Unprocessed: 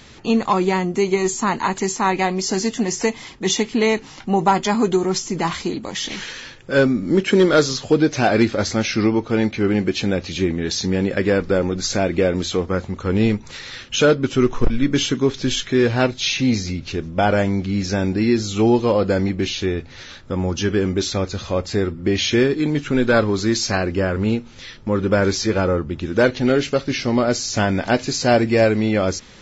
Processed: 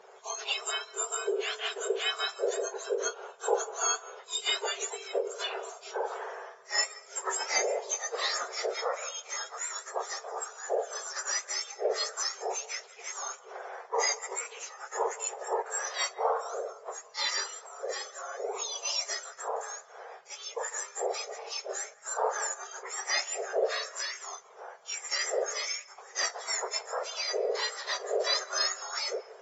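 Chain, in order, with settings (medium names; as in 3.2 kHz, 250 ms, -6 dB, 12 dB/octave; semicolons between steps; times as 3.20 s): spectrum inverted on a logarithmic axis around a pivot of 1.7 kHz; on a send at -18 dB: brick-wall FIR high-pass 420 Hz + reverberation RT60 0.50 s, pre-delay 149 ms; on the sum: trim -8 dB; AAC 24 kbps 22.05 kHz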